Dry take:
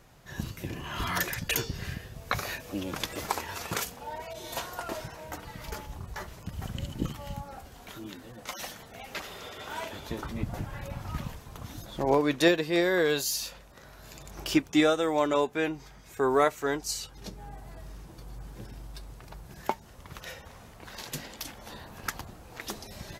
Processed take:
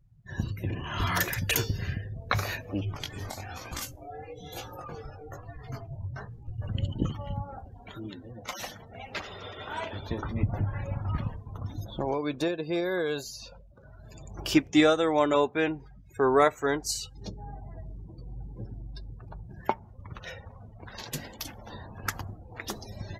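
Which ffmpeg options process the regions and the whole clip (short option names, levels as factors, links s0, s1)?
-filter_complex "[0:a]asettb=1/sr,asplit=3[s0][s1][s2];[s0]atrim=end=2.814[s3];[s1]atrim=start=2.81:end=6.69,asetpts=PTS-STARTPTS,afade=t=in:d=0.004:c=qsin,afade=t=out:st=3.876:d=0.004:c=qsin,flanger=delay=17:depth=5.5:speed=1.1,acrossover=split=140|3000[s4][s5][s6];[s5]acompressor=threshold=0.0126:ratio=5:attack=3.2:release=140:knee=2.83:detection=peak[s7];[s4][s7][s6]amix=inputs=3:normalize=0,afreqshift=-180[s8];[s2]atrim=start=6.686[s9];[s3][s8]acrossfade=d=0.004:c1=hsin:c2=qsin[s10];[s10][s9]acrossfade=d=0.004:c1=qsin:c2=hsin,asettb=1/sr,asplit=3[s11][s12][s13];[s11]atrim=end=11.934[s14];[s12]atrim=start=11.93:end=13.91,asetpts=PTS-STARTPTS,afade=t=in:d=0.004:c=qsin,afade=t=out:st=1.976:d=0.004:c=qsin,bandreject=f=1900:w=6.5,acrossover=split=2000|6500[s15][s16][s17];[s15]acompressor=threshold=0.0355:ratio=4[s18];[s16]acompressor=threshold=0.00562:ratio=4[s19];[s17]acompressor=threshold=0.00355:ratio=4[s20];[s18][s19][s20]amix=inputs=3:normalize=0,asoftclip=type=hard:threshold=0.0944[s21];[s13]atrim=start=13.906[s22];[s14][s21]acrossfade=d=0.004:c1=hsin:c2=qsin[s23];[s23][s22]acrossfade=d=0.004:c1=qsin:c2=hsin,afftdn=nr=32:nf=-46,equalizer=f=100:t=o:w=0.3:g=10.5,volume=1.26"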